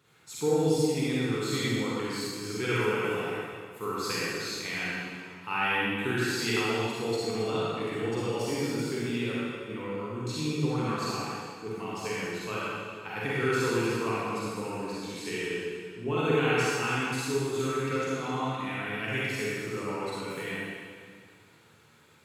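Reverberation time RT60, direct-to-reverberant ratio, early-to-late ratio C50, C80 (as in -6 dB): 1.9 s, -8.0 dB, -6.0 dB, -3.0 dB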